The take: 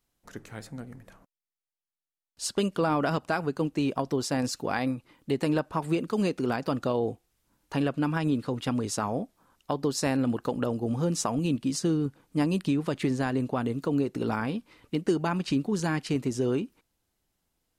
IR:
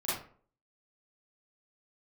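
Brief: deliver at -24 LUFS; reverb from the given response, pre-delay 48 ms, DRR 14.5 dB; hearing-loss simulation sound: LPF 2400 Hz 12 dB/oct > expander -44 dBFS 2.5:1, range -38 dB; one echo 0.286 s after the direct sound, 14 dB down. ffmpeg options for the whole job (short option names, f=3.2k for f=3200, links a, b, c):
-filter_complex "[0:a]aecho=1:1:286:0.2,asplit=2[a][b];[1:a]atrim=start_sample=2205,adelay=48[c];[b][c]afir=irnorm=-1:irlink=0,volume=-21dB[d];[a][d]amix=inputs=2:normalize=0,lowpass=2.4k,agate=range=-38dB:threshold=-44dB:ratio=2.5,volume=5dB"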